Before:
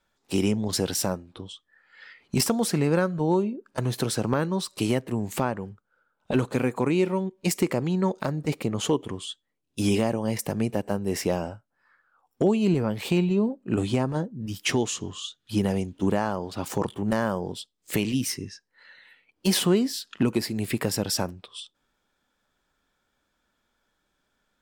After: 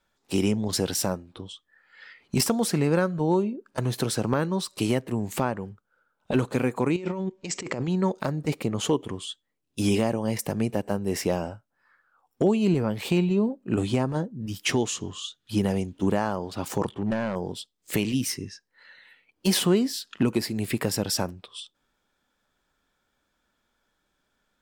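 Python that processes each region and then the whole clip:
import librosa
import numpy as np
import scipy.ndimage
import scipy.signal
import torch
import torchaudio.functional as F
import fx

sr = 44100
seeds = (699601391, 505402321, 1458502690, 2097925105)

y = fx.chain(x, sr, fx.cheby1_lowpass(hz=7800.0, order=6),
    fx.over_compress(threshold_db=-31.0, ratio=-1.0), at=(6.96, 7.88))
y = fx.chain(y, sr, fx.overload_stage(gain_db=20.0),
    fx.air_absorb(metres=110.0), at=(16.9, 17.36))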